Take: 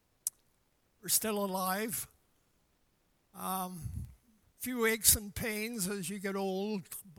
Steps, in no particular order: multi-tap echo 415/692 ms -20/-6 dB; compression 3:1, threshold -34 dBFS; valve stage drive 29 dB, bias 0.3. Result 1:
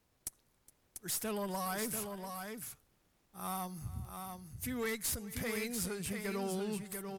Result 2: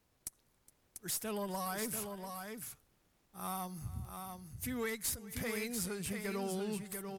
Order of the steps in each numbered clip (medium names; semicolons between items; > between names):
valve stage > compression > multi-tap echo; compression > valve stage > multi-tap echo